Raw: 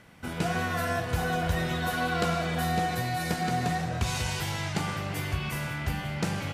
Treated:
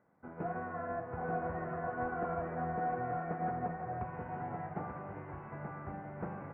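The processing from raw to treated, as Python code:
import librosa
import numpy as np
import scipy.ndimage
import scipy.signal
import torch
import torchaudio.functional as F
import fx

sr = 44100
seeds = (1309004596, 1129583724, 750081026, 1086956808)

p1 = fx.highpass(x, sr, hz=470.0, slope=6)
p2 = fx.fold_sine(p1, sr, drive_db=9, ceiling_db=-16.0)
p3 = p1 + (p2 * librosa.db_to_amplitude(-10.0))
p4 = scipy.ndimage.gaussian_filter1d(p3, 7.0, mode='constant')
p5 = p4 + 10.0 ** (-4.5 / 20.0) * np.pad(p4, (int(883 * sr / 1000.0), 0))[:len(p4)]
p6 = fx.upward_expand(p5, sr, threshold_db=-43.0, expansion=1.5)
y = p6 * librosa.db_to_amplitude(-7.5)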